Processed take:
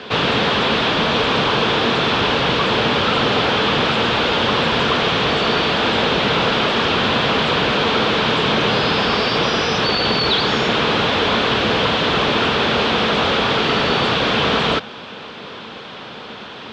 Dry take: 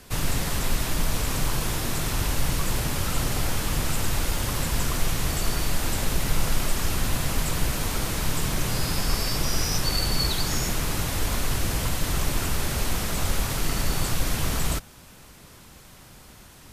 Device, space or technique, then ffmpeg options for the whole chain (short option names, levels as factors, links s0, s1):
overdrive pedal into a guitar cabinet: -filter_complex "[0:a]asplit=2[s0][s1];[s1]highpass=f=720:p=1,volume=12.6,asoftclip=type=tanh:threshold=0.335[s2];[s0][s2]amix=inputs=2:normalize=0,lowpass=f=4400:p=1,volume=0.501,highpass=91,equalizer=f=220:t=q:w=4:g=7,equalizer=f=450:t=q:w=4:g=8,equalizer=f=2000:t=q:w=4:g=-5,equalizer=f=3400:t=q:w=4:g=5,lowpass=f=3800:w=0.5412,lowpass=f=3800:w=1.3066,volume=1.68"